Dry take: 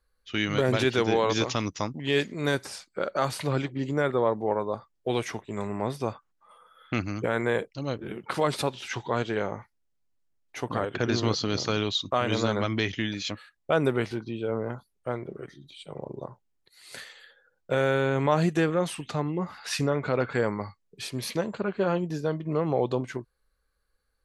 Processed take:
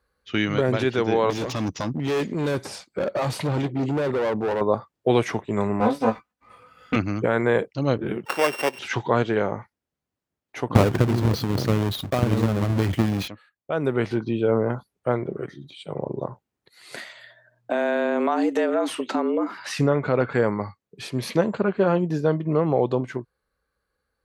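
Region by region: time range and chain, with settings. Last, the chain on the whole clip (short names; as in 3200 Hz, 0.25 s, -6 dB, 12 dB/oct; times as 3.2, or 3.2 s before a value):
1.3–4.61 bell 1500 Hz -5.5 dB 0.98 oct + hard clip -30.5 dBFS
5.8–6.96 minimum comb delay 4 ms + notch 330 Hz, Q 8.6 + doubler 18 ms -3 dB
8.25–8.79 sample sorter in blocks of 16 samples + HPF 380 Hz
10.75–13.28 half-waves squared off + low shelf 200 Hz +11.5 dB + transient shaper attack +6 dB, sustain +10 dB
16.96–19.77 frequency shift +120 Hz + compressor 3:1, threshold -29 dBFS
whole clip: vocal rider 0.5 s; HPF 78 Hz; high shelf 2800 Hz -9.5 dB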